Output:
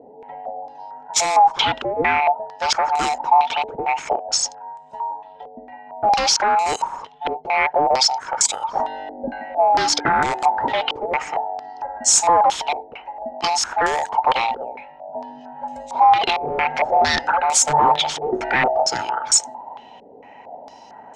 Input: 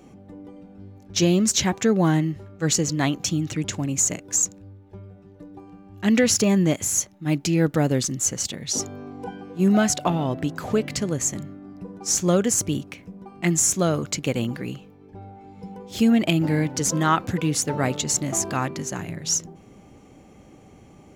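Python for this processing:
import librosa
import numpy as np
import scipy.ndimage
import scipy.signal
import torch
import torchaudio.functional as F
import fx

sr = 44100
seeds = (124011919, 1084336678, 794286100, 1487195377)

p1 = fx.band_invert(x, sr, width_hz=1000)
p2 = scipy.signal.sosfilt(scipy.signal.butter(2, 57.0, 'highpass', fs=sr, output='sos'), p1)
p3 = fx.over_compress(p2, sr, threshold_db=-24.0, ratio=-1.0)
p4 = p2 + F.gain(torch.from_numpy(p3), 1.0).numpy()
p5 = 10.0 ** (-12.5 / 20.0) * (np.abs((p4 / 10.0 ** (-12.5 / 20.0) + 3.0) % 4.0 - 2.0) - 1.0)
p6 = fx.dynamic_eq(p5, sr, hz=1400.0, q=2.1, threshold_db=-39.0, ratio=4.0, max_db=5)
p7 = fx.filter_held_lowpass(p6, sr, hz=4.4, low_hz=440.0, high_hz=7600.0)
y = F.gain(torch.from_numpy(p7), -3.5).numpy()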